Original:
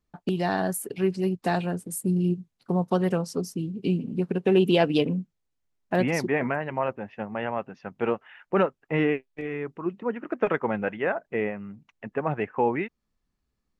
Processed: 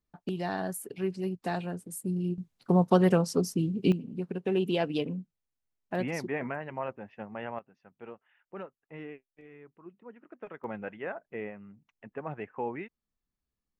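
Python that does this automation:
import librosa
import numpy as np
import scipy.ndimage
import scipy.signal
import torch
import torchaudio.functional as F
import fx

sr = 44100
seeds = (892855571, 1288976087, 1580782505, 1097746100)

y = fx.gain(x, sr, db=fx.steps((0.0, -7.0), (2.38, 2.0), (3.92, -8.0), (7.59, -19.5), (10.64, -10.5)))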